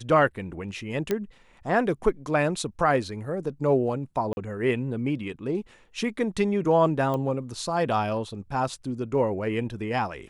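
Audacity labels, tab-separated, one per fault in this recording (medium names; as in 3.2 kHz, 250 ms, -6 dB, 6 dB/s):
1.110000	1.110000	pop -12 dBFS
4.330000	4.370000	dropout 41 ms
7.140000	7.140000	pop -18 dBFS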